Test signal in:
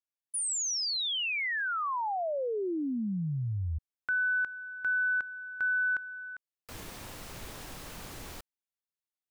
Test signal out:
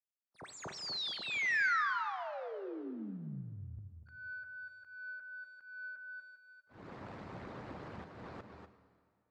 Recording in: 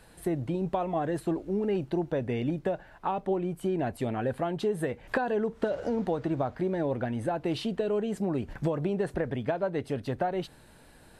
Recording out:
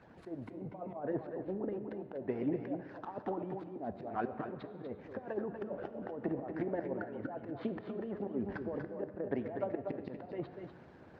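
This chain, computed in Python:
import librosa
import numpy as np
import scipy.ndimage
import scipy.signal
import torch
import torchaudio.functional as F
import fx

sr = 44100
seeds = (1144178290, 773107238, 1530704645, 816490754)

p1 = scipy.ndimage.median_filter(x, 15, mode='constant')
p2 = fx.env_lowpass_down(p1, sr, base_hz=650.0, full_db=-24.5)
p3 = fx.hpss(p2, sr, part='harmonic', gain_db=-17)
p4 = fx.auto_swell(p3, sr, attack_ms=245.0)
p5 = fx.bandpass_edges(p4, sr, low_hz=100.0, high_hz=3700.0)
p6 = p5 + fx.echo_multitap(p5, sr, ms=(241, 251), db=(-7.5, -12.5), dry=0)
p7 = fx.rev_plate(p6, sr, seeds[0], rt60_s=2.0, hf_ratio=0.9, predelay_ms=0, drr_db=10.5)
y = F.gain(torch.from_numpy(p7), 5.0).numpy()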